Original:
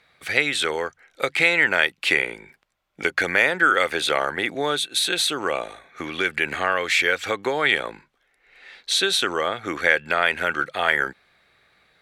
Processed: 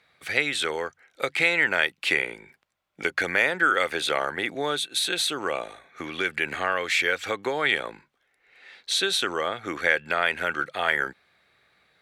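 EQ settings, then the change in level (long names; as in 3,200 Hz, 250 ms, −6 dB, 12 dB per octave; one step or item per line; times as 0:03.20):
high-pass filter 56 Hz
−3.5 dB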